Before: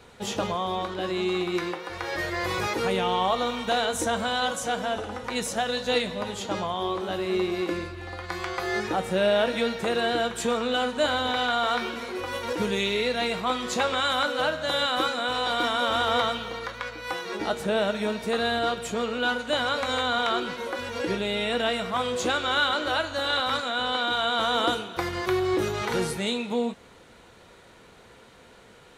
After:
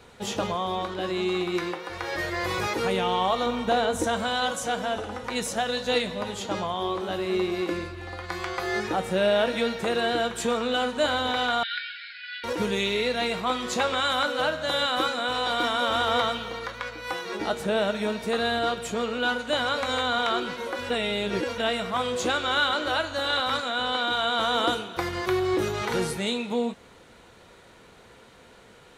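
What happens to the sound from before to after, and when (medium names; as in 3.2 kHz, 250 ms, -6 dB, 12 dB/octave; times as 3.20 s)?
3.46–4.04 s: tilt shelf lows +4.5 dB, about 1.2 kHz
11.63–12.44 s: brick-wall FIR band-pass 1.4–5.3 kHz
20.90–21.58 s: reverse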